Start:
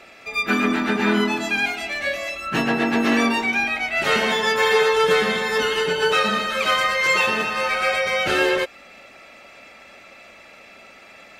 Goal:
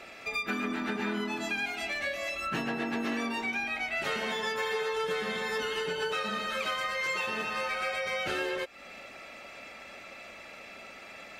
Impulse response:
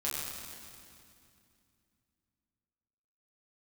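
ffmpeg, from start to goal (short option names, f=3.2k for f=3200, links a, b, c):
-af "acompressor=threshold=-30dB:ratio=4,volume=-1.5dB"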